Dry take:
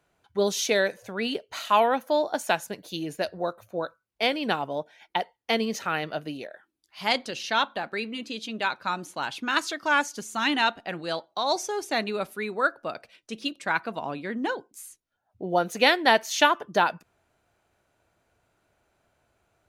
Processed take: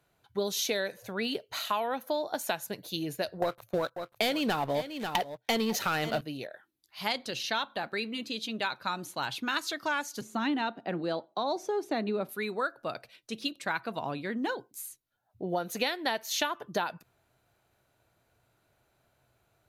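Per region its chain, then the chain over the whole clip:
0:03.42–0:06.21: leveller curve on the samples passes 3 + single-tap delay 542 ms −15.5 dB
0:10.21–0:12.29: high-pass filter 200 Hz 24 dB per octave + spectral tilt −4 dB per octave
whole clip: thirty-one-band graphic EQ 125 Hz +9 dB, 4,000 Hz +5 dB, 12,500 Hz +11 dB; downward compressor 6 to 1, threshold −25 dBFS; level −2 dB

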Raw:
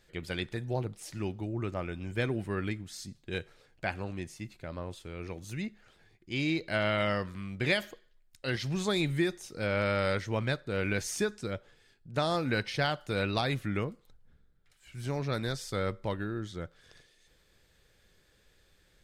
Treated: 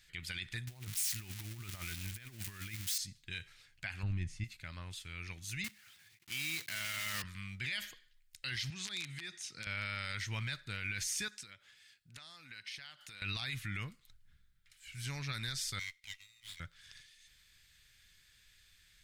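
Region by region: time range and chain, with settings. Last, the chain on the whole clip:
0:00.67–0:02.98: spike at every zero crossing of −27 dBFS + high-shelf EQ 3,600 Hz −9 dB + compressor whose output falls as the input rises −37 dBFS, ratio −0.5
0:04.03–0:04.44: low-pass filter 11,000 Hz 24 dB per octave + spectral tilt −3.5 dB per octave
0:05.64–0:07.24: one scale factor per block 3 bits + high-pass filter 110 Hz
0:08.70–0:09.67: downward compressor 10 to 1, threshold −34 dBFS + wrap-around overflow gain 29 dB + band-pass filter 140–7,500 Hz
0:11.28–0:13.22: high-pass filter 320 Hz 6 dB per octave + downward compressor 12 to 1, threshold −45 dBFS
0:15.79–0:16.60: linear-phase brick-wall high-pass 1,900 Hz + windowed peak hold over 5 samples
whole clip: drawn EQ curve 110 Hz 0 dB, 500 Hz −18 dB, 2,100 Hz +8 dB; brickwall limiter −24.5 dBFS; level −3.5 dB

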